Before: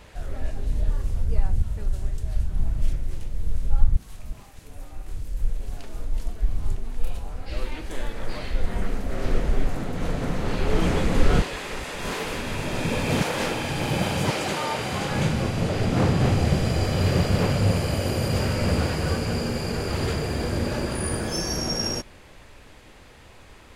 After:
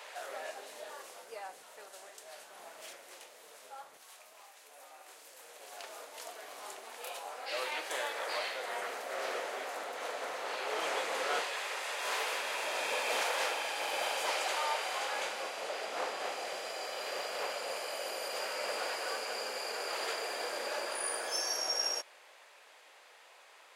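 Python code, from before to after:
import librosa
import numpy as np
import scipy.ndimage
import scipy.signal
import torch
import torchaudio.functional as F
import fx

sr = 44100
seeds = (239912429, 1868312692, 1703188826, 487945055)

y = fx.rider(x, sr, range_db=10, speed_s=2.0)
y = scipy.signal.sosfilt(scipy.signal.butter(4, 550.0, 'highpass', fs=sr, output='sos'), y)
y = y * librosa.db_to_amplitude(-4.0)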